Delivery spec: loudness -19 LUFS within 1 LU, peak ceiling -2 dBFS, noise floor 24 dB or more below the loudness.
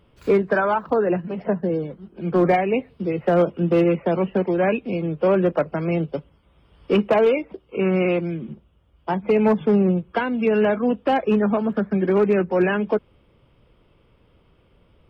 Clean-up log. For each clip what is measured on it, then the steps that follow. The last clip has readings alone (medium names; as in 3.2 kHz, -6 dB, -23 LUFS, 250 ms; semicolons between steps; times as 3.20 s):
clipped samples 0.3%; clipping level -10.5 dBFS; loudness -21.0 LUFS; peak level -10.5 dBFS; loudness target -19.0 LUFS
-> clip repair -10.5 dBFS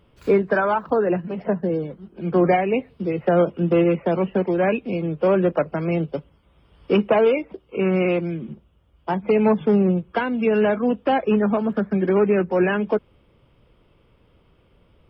clipped samples 0.0%; loudness -21.0 LUFS; peak level -7.5 dBFS; loudness target -19.0 LUFS
-> trim +2 dB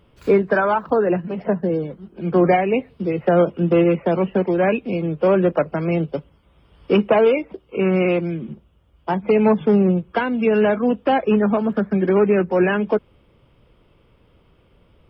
loudness -19.0 LUFS; peak level -5.5 dBFS; noise floor -57 dBFS